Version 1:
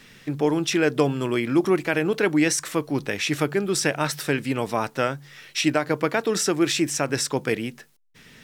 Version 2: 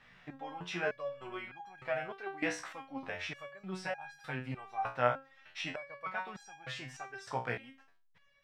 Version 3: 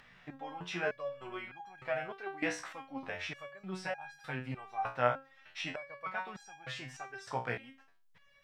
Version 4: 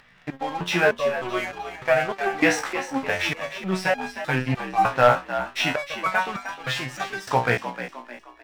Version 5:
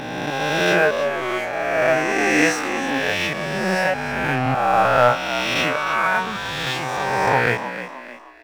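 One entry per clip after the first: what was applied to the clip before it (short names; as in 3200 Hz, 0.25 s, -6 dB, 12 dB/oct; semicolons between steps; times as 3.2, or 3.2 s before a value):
EQ curve 140 Hz 0 dB, 370 Hz -9 dB, 730 Hz +9 dB, 3000 Hz -1 dB, 11000 Hz -20 dB; stepped resonator 3.3 Hz 61–820 Hz; gain -3.5 dB
upward compressor, threshold -58 dBFS
sample leveller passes 2; on a send: frequency-shifting echo 0.307 s, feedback 41%, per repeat +61 Hz, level -11 dB; on the sum: gain +8 dB
spectral swells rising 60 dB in 2.31 s; gain -1 dB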